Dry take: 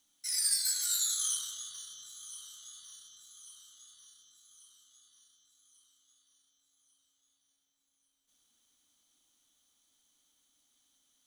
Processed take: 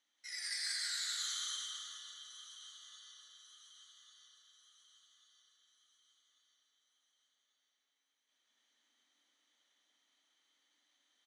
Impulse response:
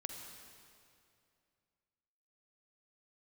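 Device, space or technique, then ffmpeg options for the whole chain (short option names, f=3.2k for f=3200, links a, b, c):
station announcement: -filter_complex "[0:a]highpass=380,lowpass=4.1k,equalizer=f=1.9k:t=o:w=0.42:g=10,aecho=1:1:180.8|288.6:0.891|0.708[a];[1:a]atrim=start_sample=2205[b];[a][b]afir=irnorm=-1:irlink=0,volume=-1.5dB"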